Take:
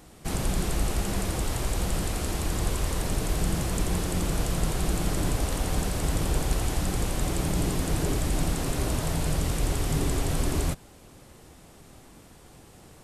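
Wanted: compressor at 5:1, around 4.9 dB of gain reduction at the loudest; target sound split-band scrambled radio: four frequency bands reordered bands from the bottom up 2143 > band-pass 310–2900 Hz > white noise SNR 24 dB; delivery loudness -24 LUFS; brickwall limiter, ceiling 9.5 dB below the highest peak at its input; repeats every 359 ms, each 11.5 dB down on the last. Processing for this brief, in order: compression 5:1, threshold -26 dBFS; peak limiter -26.5 dBFS; feedback delay 359 ms, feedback 27%, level -11.5 dB; four frequency bands reordered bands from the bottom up 2143; band-pass 310–2900 Hz; white noise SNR 24 dB; trim +9 dB

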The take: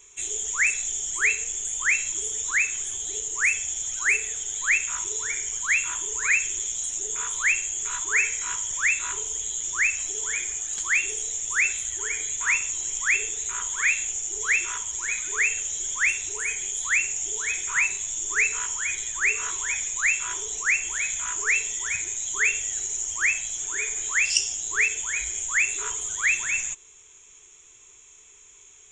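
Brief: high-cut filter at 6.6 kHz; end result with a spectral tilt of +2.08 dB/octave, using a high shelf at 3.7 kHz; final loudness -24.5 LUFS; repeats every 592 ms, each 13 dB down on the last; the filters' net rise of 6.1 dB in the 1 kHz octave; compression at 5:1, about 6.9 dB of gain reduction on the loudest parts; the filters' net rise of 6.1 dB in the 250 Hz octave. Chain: low-pass 6.6 kHz; peaking EQ 250 Hz +9 dB; peaking EQ 1 kHz +6.5 dB; treble shelf 3.7 kHz +7.5 dB; compression 5:1, threshold -22 dBFS; feedback delay 592 ms, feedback 22%, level -13 dB; trim -0.5 dB

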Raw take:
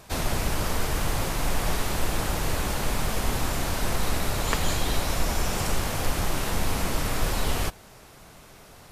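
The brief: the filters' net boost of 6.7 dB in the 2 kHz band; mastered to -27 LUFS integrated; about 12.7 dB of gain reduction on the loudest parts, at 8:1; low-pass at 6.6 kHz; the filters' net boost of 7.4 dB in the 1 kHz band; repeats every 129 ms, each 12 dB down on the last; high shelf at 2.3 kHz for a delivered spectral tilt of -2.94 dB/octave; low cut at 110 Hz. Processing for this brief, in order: high-pass 110 Hz; low-pass 6.6 kHz; peaking EQ 1 kHz +7.5 dB; peaking EQ 2 kHz +4 dB; treble shelf 2.3 kHz +4 dB; compression 8:1, threshold -30 dBFS; feedback delay 129 ms, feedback 25%, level -12 dB; trim +5.5 dB

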